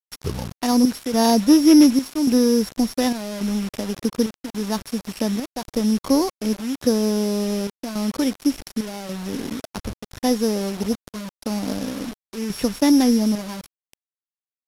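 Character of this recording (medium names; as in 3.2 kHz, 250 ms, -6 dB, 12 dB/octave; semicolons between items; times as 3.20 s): a buzz of ramps at a fixed pitch in blocks of 8 samples; chopped level 0.88 Hz, depth 65%, duty 75%; a quantiser's noise floor 6-bit, dither none; AAC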